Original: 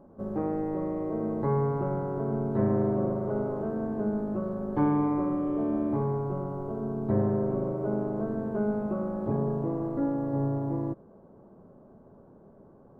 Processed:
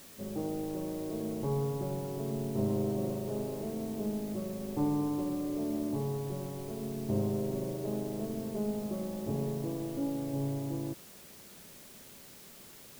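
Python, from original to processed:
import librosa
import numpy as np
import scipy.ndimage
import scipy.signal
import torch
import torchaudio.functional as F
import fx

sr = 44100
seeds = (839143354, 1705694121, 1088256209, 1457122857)

y = fx.tracing_dist(x, sr, depth_ms=0.085)
y = np.convolve(y, np.full(26, 1.0 / 26))[:len(y)]
y = fx.quant_dither(y, sr, seeds[0], bits=8, dither='triangular')
y = y * librosa.db_to_amplitude(-5.0)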